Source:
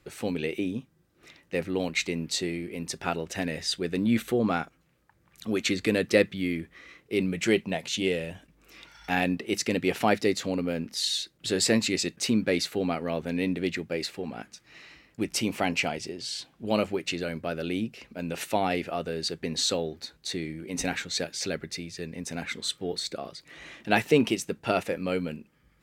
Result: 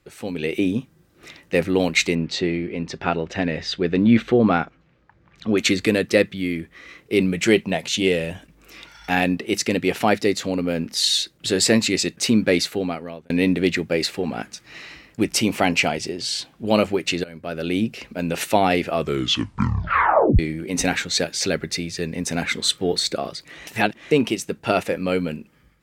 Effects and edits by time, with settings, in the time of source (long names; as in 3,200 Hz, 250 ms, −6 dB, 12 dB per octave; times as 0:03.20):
0:02.15–0:05.58: high-frequency loss of the air 180 metres
0:12.55–0:13.30: fade out
0:17.24–0:17.96: fade in linear, from −19 dB
0:18.91: tape stop 1.48 s
0:23.67–0:24.11: reverse
whole clip: automatic gain control gain up to 11.5 dB; level −1 dB